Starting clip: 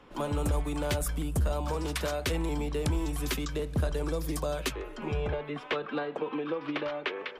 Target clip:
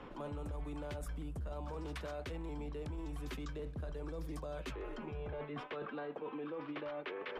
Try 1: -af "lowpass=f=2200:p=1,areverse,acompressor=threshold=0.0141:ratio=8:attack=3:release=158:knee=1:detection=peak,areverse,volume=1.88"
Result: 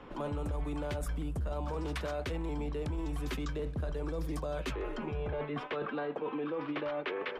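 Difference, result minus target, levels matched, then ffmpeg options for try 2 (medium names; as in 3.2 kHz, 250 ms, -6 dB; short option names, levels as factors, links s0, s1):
compression: peak gain reduction -7 dB
-af "lowpass=f=2200:p=1,areverse,acompressor=threshold=0.00562:ratio=8:attack=3:release=158:knee=1:detection=peak,areverse,volume=1.88"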